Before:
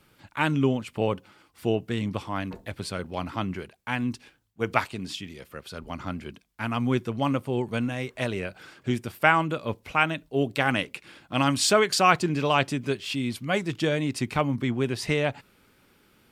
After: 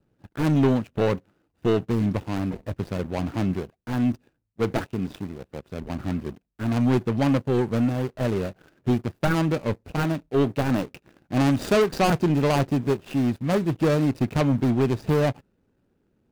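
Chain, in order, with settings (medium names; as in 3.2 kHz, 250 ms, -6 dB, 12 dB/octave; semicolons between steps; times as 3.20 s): median filter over 41 samples; waveshaping leveller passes 2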